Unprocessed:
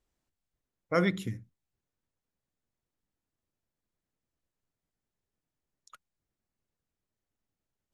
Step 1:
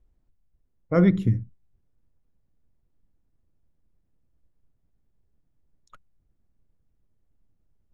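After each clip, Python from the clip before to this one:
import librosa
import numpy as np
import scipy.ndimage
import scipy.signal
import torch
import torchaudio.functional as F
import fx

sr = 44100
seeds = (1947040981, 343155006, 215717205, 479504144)

y = fx.rider(x, sr, range_db=10, speed_s=0.5)
y = fx.tilt_eq(y, sr, slope=-4.0)
y = F.gain(torch.from_numpy(y), 3.0).numpy()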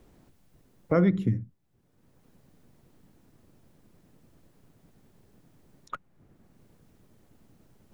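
y = fx.band_squash(x, sr, depth_pct=70)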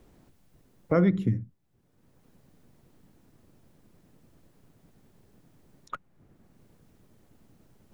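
y = x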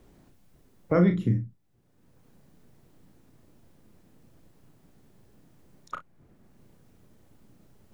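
y = fx.room_early_taps(x, sr, ms=(34, 58), db=(-6.5, -16.0))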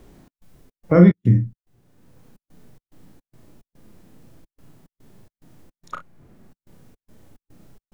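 y = fx.step_gate(x, sr, bpm=108, pattern='xx.xx.xx.xx.xxx', floor_db=-60.0, edge_ms=4.5)
y = fx.hpss(y, sr, part='harmonic', gain_db=7)
y = F.gain(torch.from_numpy(y), 3.5).numpy()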